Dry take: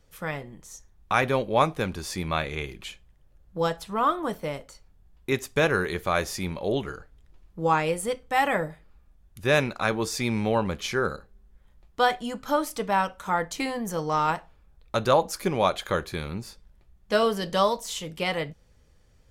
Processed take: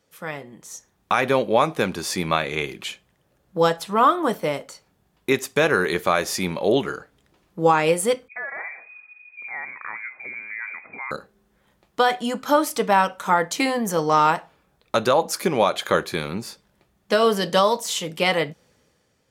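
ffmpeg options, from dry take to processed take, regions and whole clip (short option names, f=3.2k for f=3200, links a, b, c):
-filter_complex "[0:a]asettb=1/sr,asplit=3[a][b][c];[a]atrim=end=8.284[d];[b]atrim=start=8.28:end=11.11,asetpts=PTS-STARTPTS,afade=t=in:d=0.004:c=qsin,afade=t=out:st=2.826:d=0.004:c=qsin,acompressor=threshold=-39dB:ratio=4:attack=3.2:release=140:knee=1:detection=peak,acrossover=split=210[e][f];[f]adelay=50[g];[e][g]amix=inputs=2:normalize=0,atrim=end_sample=124803,lowpass=f=2.1k:t=q:w=0.5098,lowpass=f=2.1k:t=q:w=0.6013,lowpass=f=2.1k:t=q:w=0.9,lowpass=f=2.1k:t=q:w=2.563,afreqshift=-2500[h];[c]atrim=start=11.106[i];[d][h]acrossfade=d=0.004:c1=hsin:c2=qsin[j];[j][i]acrossfade=d=0.004:c1=qsin:c2=hsin,alimiter=limit=-14.5dB:level=0:latency=1:release=162,highpass=180,dynaudnorm=f=110:g=11:m=8dB"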